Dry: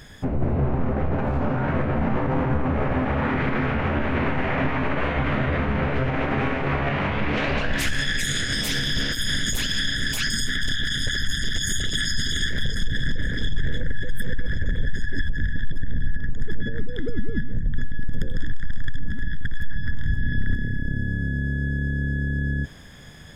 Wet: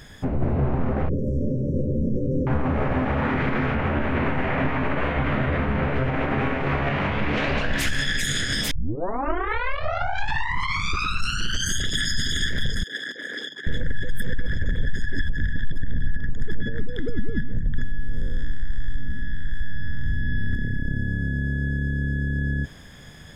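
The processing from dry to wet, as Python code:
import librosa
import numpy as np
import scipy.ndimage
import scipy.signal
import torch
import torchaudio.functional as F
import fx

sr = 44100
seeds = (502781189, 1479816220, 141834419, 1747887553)

y = fx.brickwall_bandstop(x, sr, low_hz=590.0, high_hz=5300.0, at=(1.09, 2.47))
y = fx.peak_eq(y, sr, hz=5900.0, db=-4.5, octaves=1.4, at=(3.75, 6.61))
y = fx.highpass(y, sr, hz=330.0, slope=24, at=(12.83, 13.67))
y = fx.spec_blur(y, sr, span_ms=166.0, at=(17.84, 20.52), fade=0.02)
y = fx.peak_eq(y, sr, hz=930.0, db=-9.5, octaves=0.51, at=(21.76, 22.36))
y = fx.edit(y, sr, fx.tape_start(start_s=8.71, length_s=3.15), tone=tone)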